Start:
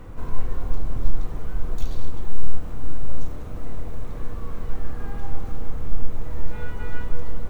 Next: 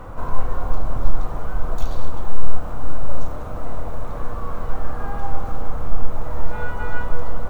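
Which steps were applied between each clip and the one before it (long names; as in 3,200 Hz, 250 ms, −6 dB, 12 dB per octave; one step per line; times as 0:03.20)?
flat-topped bell 890 Hz +9 dB
level +2.5 dB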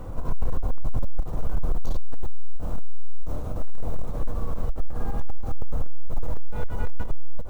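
parametric band 1,400 Hz −11.5 dB 2.2 octaves
gain into a clipping stage and back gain 15 dB
every ending faded ahead of time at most 170 dB per second
level +2 dB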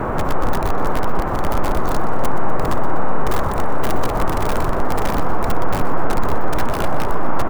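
in parallel at −3 dB: wrap-around overflow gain 19 dB
on the sum: noise in a band 96–1,200 Hz −25 dBFS
repeating echo 123 ms, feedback 60%, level −14.5 dB
level +1.5 dB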